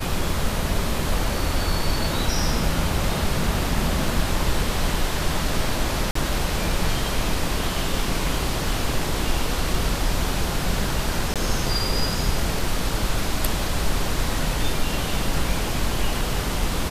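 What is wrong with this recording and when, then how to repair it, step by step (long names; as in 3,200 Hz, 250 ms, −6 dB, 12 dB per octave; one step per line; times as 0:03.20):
0:06.11–0:06.15: drop-out 44 ms
0:11.34–0:11.36: drop-out 17 ms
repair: repair the gap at 0:06.11, 44 ms
repair the gap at 0:11.34, 17 ms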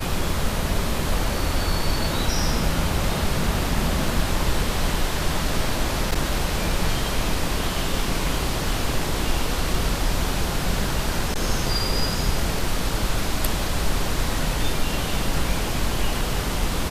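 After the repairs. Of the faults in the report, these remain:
none of them is left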